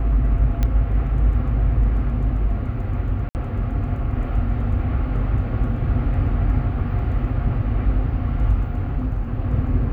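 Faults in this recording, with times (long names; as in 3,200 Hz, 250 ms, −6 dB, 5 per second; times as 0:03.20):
0:00.63: click −10 dBFS
0:03.29–0:03.35: drop-out 59 ms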